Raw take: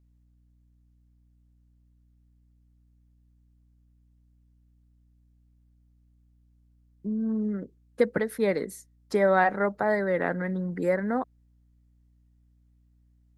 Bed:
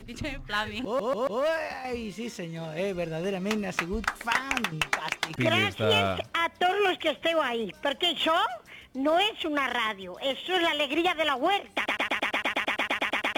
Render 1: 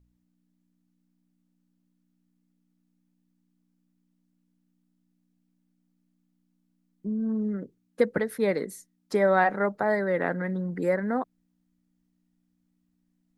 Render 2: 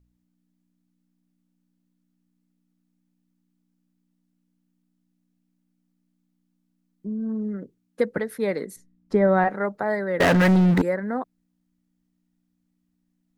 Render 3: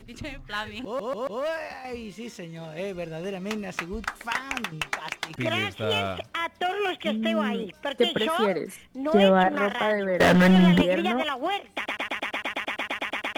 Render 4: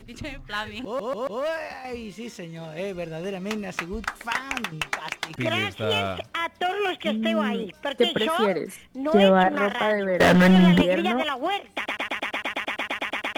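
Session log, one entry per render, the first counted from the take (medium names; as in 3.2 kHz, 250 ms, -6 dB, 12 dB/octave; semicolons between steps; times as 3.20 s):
de-hum 60 Hz, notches 2
8.76–9.48 s: RIAA curve playback; 10.20–10.82 s: waveshaping leveller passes 5
add bed -2.5 dB
trim +1.5 dB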